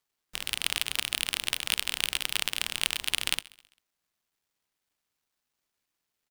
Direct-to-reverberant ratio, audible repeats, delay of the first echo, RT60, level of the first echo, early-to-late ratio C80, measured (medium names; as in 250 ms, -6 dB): no reverb, 2, 132 ms, no reverb, -22.5 dB, no reverb